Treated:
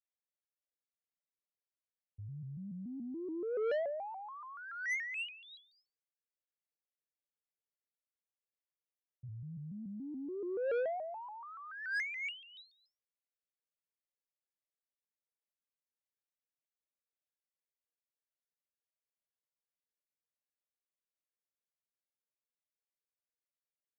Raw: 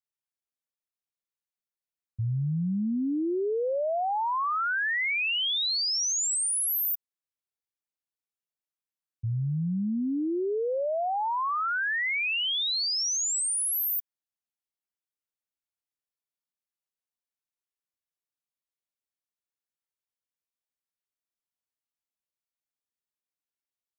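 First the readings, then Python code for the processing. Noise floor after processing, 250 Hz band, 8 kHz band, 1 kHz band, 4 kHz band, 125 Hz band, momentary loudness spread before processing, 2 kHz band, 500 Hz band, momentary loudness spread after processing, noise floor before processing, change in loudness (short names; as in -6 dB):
under -85 dBFS, -14.5 dB, under -30 dB, -17.0 dB, -24.5 dB, -17.0 dB, 5 LU, -11.5 dB, -7.5 dB, 15 LU, under -85 dBFS, -13.0 dB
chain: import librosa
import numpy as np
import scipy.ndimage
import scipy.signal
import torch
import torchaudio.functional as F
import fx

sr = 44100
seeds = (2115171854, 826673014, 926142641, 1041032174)

y = fx.formant_cascade(x, sr, vowel='e')
y = 10.0 ** (-34.0 / 20.0) * np.tanh(y / 10.0 ** (-34.0 / 20.0))
y = fx.vibrato_shape(y, sr, shape='square', rate_hz=3.5, depth_cents=160.0)
y = y * 10.0 ** (3.0 / 20.0)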